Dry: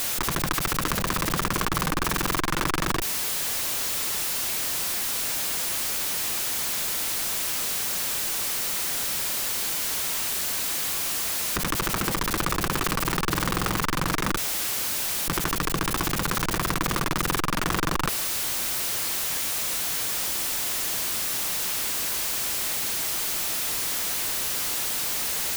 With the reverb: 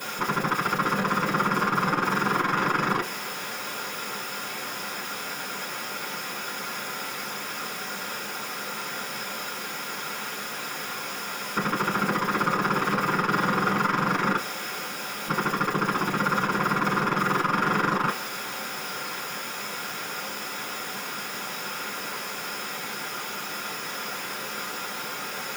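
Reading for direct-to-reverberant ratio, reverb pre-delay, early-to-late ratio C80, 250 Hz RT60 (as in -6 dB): -10.0 dB, 3 ms, 23.0 dB, no reading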